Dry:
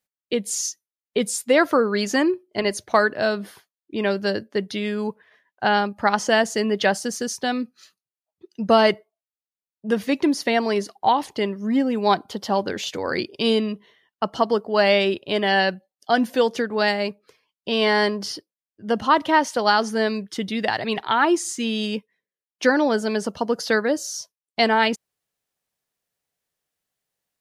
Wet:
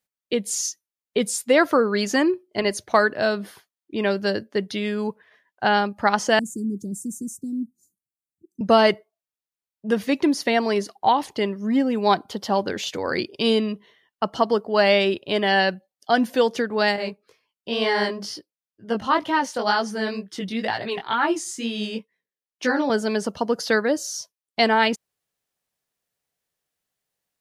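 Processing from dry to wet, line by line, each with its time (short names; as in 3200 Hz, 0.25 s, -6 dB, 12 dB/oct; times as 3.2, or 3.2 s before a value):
6.39–8.61 Chebyshev band-stop 320–7400 Hz, order 4
16.96–22.9 chorus 2.1 Hz, delay 16.5 ms, depth 5.8 ms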